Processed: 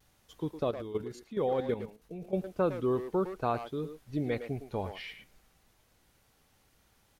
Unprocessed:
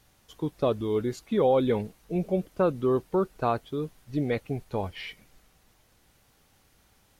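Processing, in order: 0.63–2.34 level quantiser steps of 12 dB; vibrato 0.59 Hz 25 cents; speakerphone echo 0.11 s, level -8 dB; gain -4.5 dB

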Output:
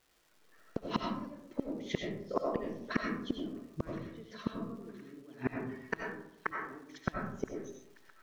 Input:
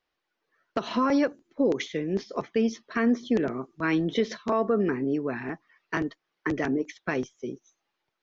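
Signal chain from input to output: low shelf 360 Hz +7.5 dB; flipped gate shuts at -21 dBFS, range -34 dB; crackle 310/s -59 dBFS; on a send: thin delay 1.018 s, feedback 54%, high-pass 1600 Hz, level -18.5 dB; on the sum: digital reverb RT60 0.79 s, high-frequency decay 0.4×, pre-delay 50 ms, DRR 0 dB; gain +3 dB

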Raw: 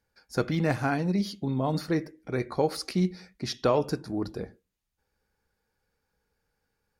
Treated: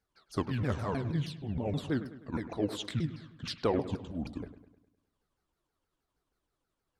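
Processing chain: repeated pitch sweeps -9.5 st, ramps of 0.158 s; dark delay 0.102 s, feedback 51%, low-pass 2700 Hz, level -13 dB; gain -4.5 dB

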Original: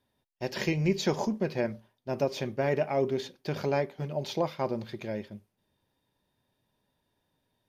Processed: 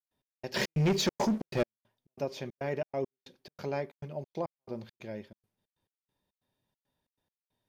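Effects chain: step gate ".x..xx.xxx.xx" 138 bpm -60 dB; 0.54–1.63 sample leveller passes 3; gain -6 dB

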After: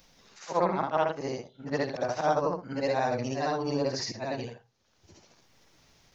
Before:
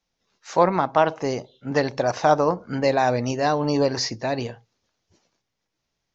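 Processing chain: short-time reversal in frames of 0.168 s; upward compressor, threshold -36 dBFS; gain -4.5 dB

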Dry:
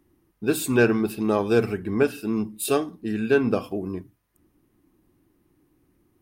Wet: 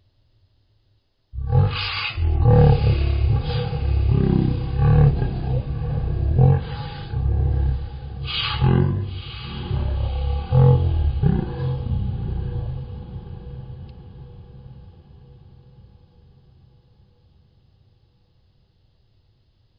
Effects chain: wide varispeed 0.314×; diffused feedback echo 0.998 s, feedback 50%, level -11 dB; gain +3.5 dB

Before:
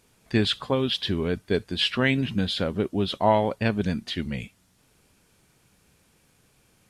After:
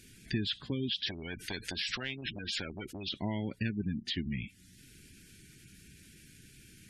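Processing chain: band shelf 760 Hz -15.5 dB; spectral gate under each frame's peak -25 dB strong; compressor 3:1, threshold -44 dBFS, peak gain reduction 19 dB; 1.06–3.09 spectral compressor 4:1; gain +7.5 dB

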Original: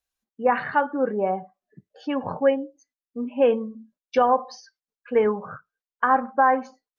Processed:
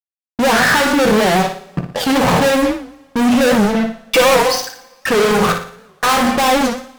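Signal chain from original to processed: in parallel at +2 dB: compressor, threshold -26 dBFS, peak gain reduction 12 dB; on the sum: LPF 3400 Hz 6 dB/oct; notches 50/100/150/200/250/300/350/400/450 Hz; 5.52–6.04 vocal tract filter e; fuzz box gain 44 dB, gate -44 dBFS; 3.74–4.51 comb 6 ms, depth 74%; on a send: flutter echo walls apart 9.9 m, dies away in 0.46 s; on the sum: two-slope reverb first 0.2 s, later 1.6 s, from -21 dB, DRR 8.5 dB; record warp 78 rpm, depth 160 cents

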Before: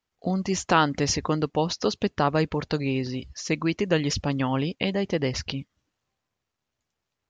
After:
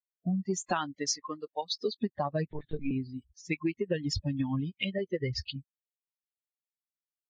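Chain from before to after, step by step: per-bin expansion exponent 3; 0.94–1.81 HPF 350 Hz -> 1100 Hz 12 dB/oct; 4.98–5.56 comb 2.3 ms, depth 51%; compressor 8:1, threshold -31 dBFS, peak gain reduction 13.5 dB; 2.49–2.91 LPC vocoder at 8 kHz pitch kept; gain +4.5 dB; Vorbis 48 kbps 48000 Hz

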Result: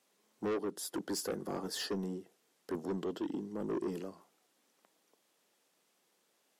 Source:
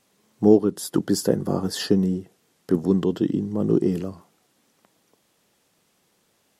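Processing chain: HPF 290 Hz 12 dB/oct; soft clip -22.5 dBFS, distortion -6 dB; gain -8 dB

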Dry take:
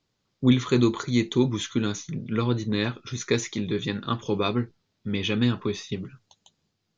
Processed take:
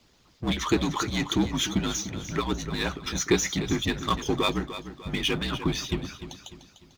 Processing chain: power-law curve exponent 0.7; harmonic-percussive split harmonic -17 dB; frequency shift -55 Hz; on a send: feedback echo 0.298 s, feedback 41%, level -12 dB

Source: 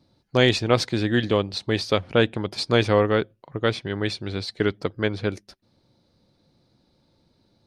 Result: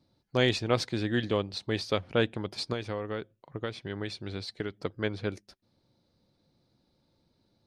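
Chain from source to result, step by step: 2.72–4.8 compressor 10:1, threshold -23 dBFS, peak gain reduction 10.5 dB; gain -7 dB

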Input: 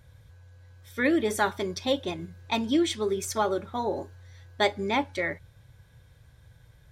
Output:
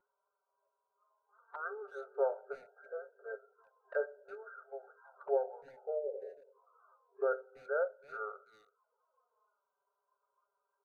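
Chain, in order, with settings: FFT band-pass 620–2500 Hz; speakerphone echo 0.21 s, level -21 dB; envelope flanger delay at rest 3.7 ms, full sweep at -40.5 dBFS; wide varispeed 0.637×; spectral noise reduction 11 dB; gain -1.5 dB

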